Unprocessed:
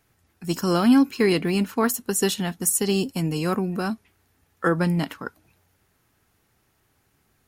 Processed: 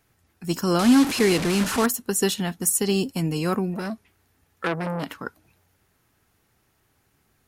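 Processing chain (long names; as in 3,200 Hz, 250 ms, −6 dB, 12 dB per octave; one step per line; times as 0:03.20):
0:00.79–0:01.86: linear delta modulator 64 kbit/s, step −20.5 dBFS
0:03.74–0:05.10: saturating transformer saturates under 1,600 Hz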